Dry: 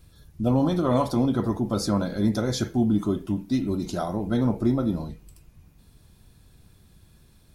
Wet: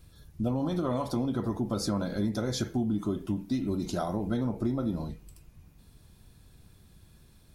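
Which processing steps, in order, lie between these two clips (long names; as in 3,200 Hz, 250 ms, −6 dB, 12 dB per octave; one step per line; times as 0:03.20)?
downward compressor, threshold −24 dBFS, peak gain reduction 8 dB
level −1.5 dB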